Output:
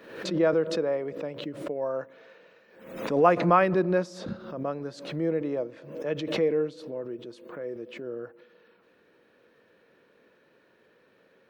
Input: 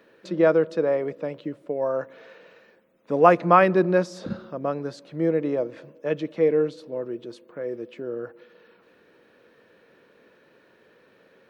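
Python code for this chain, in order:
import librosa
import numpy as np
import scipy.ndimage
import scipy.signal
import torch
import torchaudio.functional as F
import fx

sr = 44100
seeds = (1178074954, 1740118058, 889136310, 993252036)

y = fx.pre_swell(x, sr, db_per_s=76.0)
y = F.gain(torch.from_numpy(y), -5.0).numpy()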